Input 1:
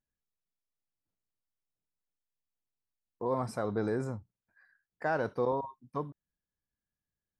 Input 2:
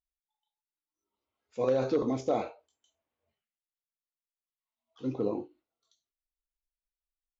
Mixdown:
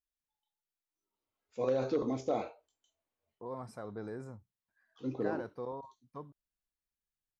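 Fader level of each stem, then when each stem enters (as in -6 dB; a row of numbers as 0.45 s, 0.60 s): -10.5 dB, -4.0 dB; 0.20 s, 0.00 s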